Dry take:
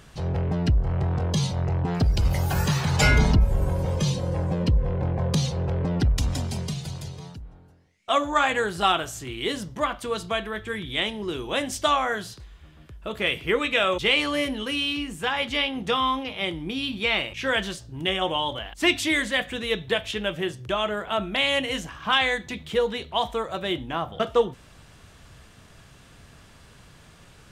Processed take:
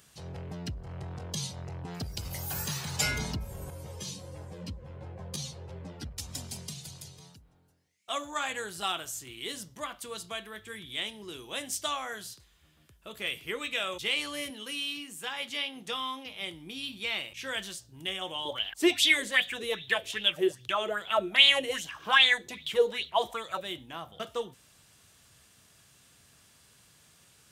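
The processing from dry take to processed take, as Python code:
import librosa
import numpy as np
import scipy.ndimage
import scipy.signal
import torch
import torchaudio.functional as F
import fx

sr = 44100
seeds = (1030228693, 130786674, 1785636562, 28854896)

y = fx.ensemble(x, sr, at=(3.7, 6.34))
y = fx.highpass(y, sr, hz=160.0, slope=12, at=(14.5, 16.26))
y = fx.bell_lfo(y, sr, hz=2.5, low_hz=360.0, high_hz=3700.0, db=18, at=(18.45, 23.61))
y = scipy.signal.sosfilt(scipy.signal.butter(2, 76.0, 'highpass', fs=sr, output='sos'), y)
y = scipy.signal.lfilter([1.0, -0.8], [1.0], y)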